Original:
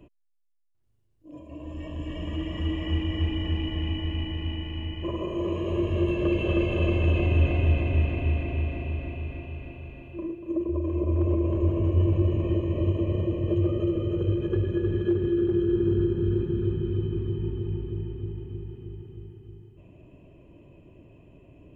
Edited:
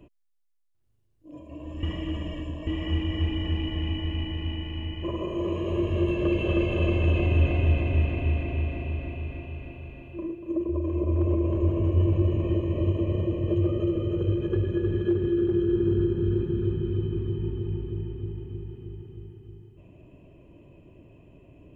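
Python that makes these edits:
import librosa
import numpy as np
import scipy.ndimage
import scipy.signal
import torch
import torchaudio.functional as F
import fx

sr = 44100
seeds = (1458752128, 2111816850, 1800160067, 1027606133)

y = fx.edit(x, sr, fx.reverse_span(start_s=1.83, length_s=0.84), tone=tone)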